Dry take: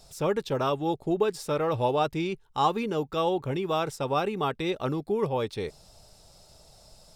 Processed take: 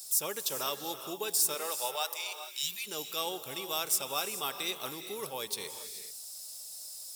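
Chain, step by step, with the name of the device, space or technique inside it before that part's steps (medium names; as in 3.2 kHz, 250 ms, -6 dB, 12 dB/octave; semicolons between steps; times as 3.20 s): 1.54–2.62 s: high-pass 280 Hz -> 1.2 kHz 24 dB/octave; turntable without a phono preamp (RIAA curve recording; white noise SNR 33 dB); 2.32–2.85 s: spectral replace 200–1700 Hz before; pre-emphasis filter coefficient 0.8; gated-style reverb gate 460 ms rising, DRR 9 dB; trim +3.5 dB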